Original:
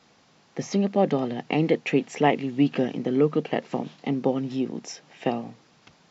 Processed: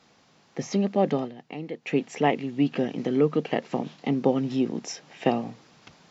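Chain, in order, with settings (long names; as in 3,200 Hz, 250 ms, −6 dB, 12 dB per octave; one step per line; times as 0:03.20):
speech leveller within 4 dB 2 s
0:01.19–0:01.94: duck −11 dB, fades 0.13 s
0:02.98–0:03.68: one half of a high-frequency compander encoder only
level −1 dB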